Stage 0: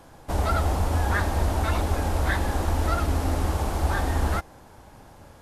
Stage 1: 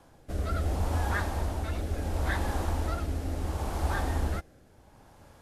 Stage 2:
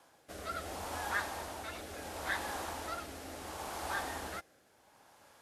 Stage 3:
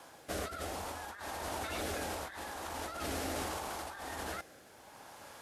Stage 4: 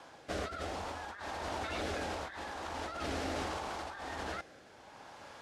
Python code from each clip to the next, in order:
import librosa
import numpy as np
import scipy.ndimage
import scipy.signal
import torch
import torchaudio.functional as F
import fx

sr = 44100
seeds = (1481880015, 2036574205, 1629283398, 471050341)

y1 = fx.rotary(x, sr, hz=0.7)
y1 = y1 * 10.0 ** (-4.5 / 20.0)
y2 = fx.highpass(y1, sr, hz=1000.0, slope=6)
y3 = fx.over_compress(y2, sr, threshold_db=-46.0, ratio=-1.0)
y3 = y3 * 10.0 ** (5.0 / 20.0)
y4 = scipy.signal.sosfilt(scipy.signal.butter(2, 5400.0, 'lowpass', fs=sr, output='sos'), y3)
y4 = y4 * 10.0 ** (1.0 / 20.0)